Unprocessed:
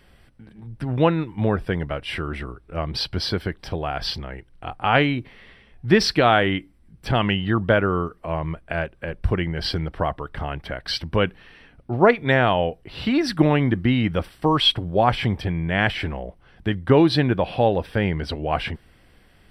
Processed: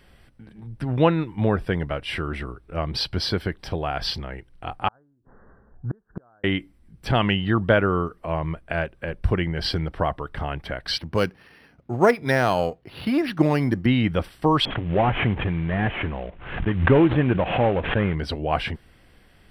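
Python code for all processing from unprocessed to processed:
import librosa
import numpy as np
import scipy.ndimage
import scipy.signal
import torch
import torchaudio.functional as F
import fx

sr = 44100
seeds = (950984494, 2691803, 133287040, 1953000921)

y = fx.chain(x, sr, fx.steep_lowpass(hz=1600.0, slope=96),
    fx.gate_flip(shuts_db=-18.0, range_db=-41), at=(4.88, 6.44))
y = fx.chain(y, sr, fx.halfwave_gain(db=-3.0),
    fx.highpass(hz=85.0, slope=12),
    fx.resample_linear(factor=6), at=(10.98, 13.86))
y = fx.chain(y, sr, fx.cvsd(bps=16000),
    fx.pre_swell(db_per_s=76.0), at=(14.65, 18.15))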